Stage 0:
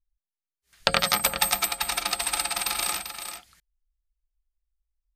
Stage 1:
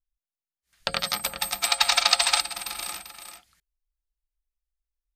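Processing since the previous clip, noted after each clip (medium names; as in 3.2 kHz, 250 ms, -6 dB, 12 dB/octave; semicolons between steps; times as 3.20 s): time-frequency box 1.64–2.40 s, 520–8200 Hz +12 dB; band-stop 410 Hz, Q 12; dynamic bell 4.4 kHz, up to +5 dB, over -30 dBFS, Q 1.4; trim -6.5 dB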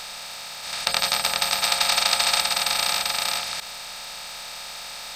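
spectral levelling over time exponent 0.2; bit crusher 9-bit; trim -5.5 dB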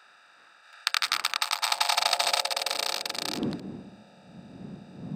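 local Wiener filter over 41 samples; wind noise 170 Hz -33 dBFS; high-pass sweep 1.4 kHz -> 190 Hz, 1.10–3.95 s; trim -3.5 dB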